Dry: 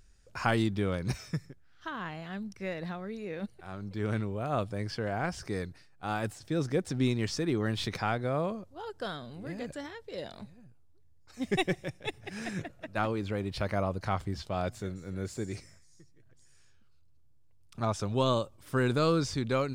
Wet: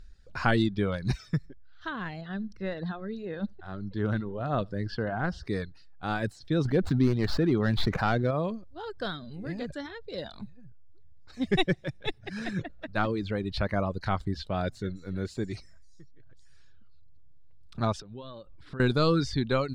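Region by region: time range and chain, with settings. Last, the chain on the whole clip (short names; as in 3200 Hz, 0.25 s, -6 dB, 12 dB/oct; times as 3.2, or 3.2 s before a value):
2.21–5.47 bell 12000 Hz -13 dB 1.4 oct + notch 2300 Hz, Q 5.3 + feedback echo 76 ms, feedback 17%, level -20 dB
6.65–8.31 median filter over 15 samples + fast leveller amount 50%
18–18.8 notch 6300 Hz + compressor 5:1, threshold -42 dBFS + air absorption 100 m
whole clip: fifteen-band EQ 100 Hz -5 dB, 1600 Hz +6 dB, 4000 Hz +12 dB; reverb removal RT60 0.7 s; tilt -2.5 dB/oct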